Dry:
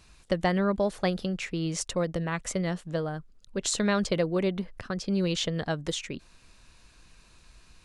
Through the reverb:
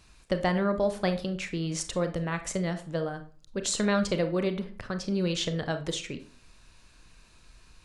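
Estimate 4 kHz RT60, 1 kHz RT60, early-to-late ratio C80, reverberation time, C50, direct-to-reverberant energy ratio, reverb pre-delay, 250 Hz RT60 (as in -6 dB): 0.30 s, 0.45 s, 17.5 dB, 0.45 s, 11.5 dB, 8.0 dB, 28 ms, 0.50 s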